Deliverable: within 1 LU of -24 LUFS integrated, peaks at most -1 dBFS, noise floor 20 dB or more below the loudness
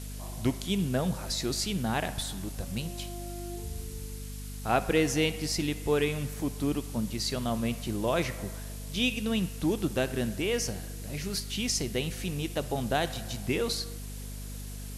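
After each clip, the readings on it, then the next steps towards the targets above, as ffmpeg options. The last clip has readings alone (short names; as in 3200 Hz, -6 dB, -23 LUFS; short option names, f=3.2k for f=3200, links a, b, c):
hum 50 Hz; harmonics up to 250 Hz; hum level -37 dBFS; noise floor -39 dBFS; noise floor target -52 dBFS; loudness -31.5 LUFS; peak -12.0 dBFS; loudness target -24.0 LUFS
-> -af "bandreject=f=50:t=h:w=4,bandreject=f=100:t=h:w=4,bandreject=f=150:t=h:w=4,bandreject=f=200:t=h:w=4,bandreject=f=250:t=h:w=4"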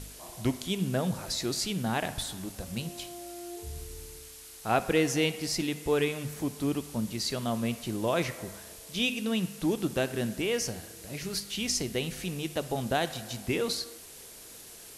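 hum none; noise floor -48 dBFS; noise floor target -52 dBFS
-> -af "afftdn=nr=6:nf=-48"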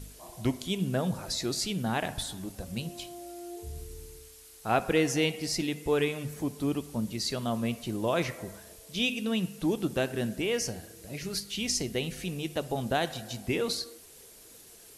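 noise floor -52 dBFS; loudness -31.0 LUFS; peak -12.5 dBFS; loudness target -24.0 LUFS
-> -af "volume=7dB"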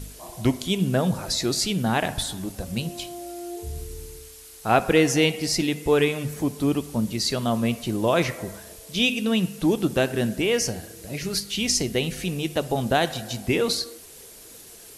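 loudness -24.0 LUFS; peak -5.5 dBFS; noise floor -45 dBFS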